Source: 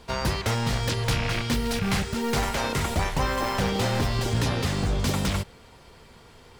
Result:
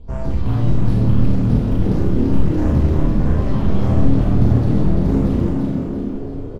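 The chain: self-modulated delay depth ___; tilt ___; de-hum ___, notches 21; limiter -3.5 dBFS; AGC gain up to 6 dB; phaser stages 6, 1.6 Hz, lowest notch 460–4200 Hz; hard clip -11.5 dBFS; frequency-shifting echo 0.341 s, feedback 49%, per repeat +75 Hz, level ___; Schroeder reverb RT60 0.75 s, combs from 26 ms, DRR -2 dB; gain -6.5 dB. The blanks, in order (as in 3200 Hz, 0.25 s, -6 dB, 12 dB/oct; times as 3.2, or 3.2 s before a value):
0.16 ms, -4.5 dB/oct, 119.3 Hz, -4 dB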